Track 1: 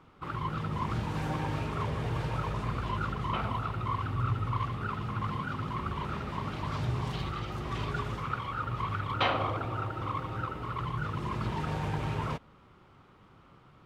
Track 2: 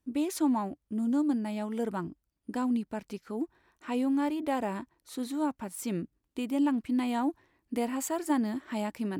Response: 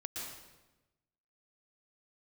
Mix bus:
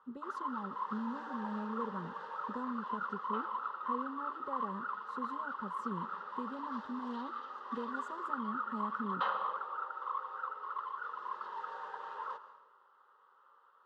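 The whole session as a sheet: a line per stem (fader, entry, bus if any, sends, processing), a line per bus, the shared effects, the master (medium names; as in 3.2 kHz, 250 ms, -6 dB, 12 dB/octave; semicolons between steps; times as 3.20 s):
-1.5 dB, 0.00 s, send -8.5 dB, Bessel high-pass 860 Hz, order 4
-3.0 dB, 0.00 s, send -19.5 dB, high-pass 76 Hz; compression, threshold -33 dBFS, peak gain reduction 10.5 dB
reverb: on, RT60 1.1 s, pre-delay 109 ms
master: low-pass 2.2 kHz 12 dB/octave; static phaser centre 460 Hz, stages 8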